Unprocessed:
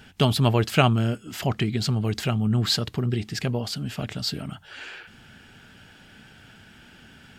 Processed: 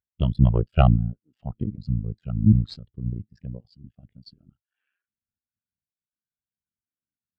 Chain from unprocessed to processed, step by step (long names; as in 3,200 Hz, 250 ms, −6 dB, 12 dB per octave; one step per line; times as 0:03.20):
sub-harmonics by changed cycles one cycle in 2, muted
harmonic generator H 4 −10 dB, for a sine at −3.5 dBFS
every bin expanded away from the loudest bin 2.5 to 1